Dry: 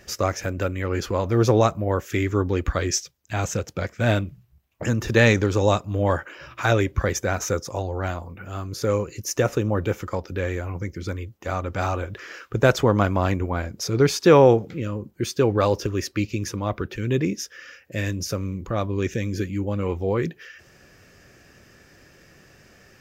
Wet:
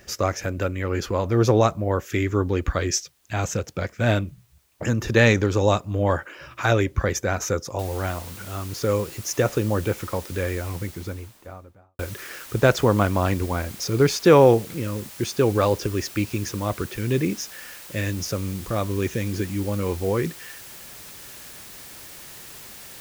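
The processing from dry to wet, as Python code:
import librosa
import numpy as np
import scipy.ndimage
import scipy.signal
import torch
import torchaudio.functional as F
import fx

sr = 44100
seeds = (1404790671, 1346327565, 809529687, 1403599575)

y = fx.noise_floor_step(x, sr, seeds[0], at_s=7.79, before_db=-66, after_db=-42, tilt_db=0.0)
y = fx.studio_fade_out(y, sr, start_s=10.61, length_s=1.38)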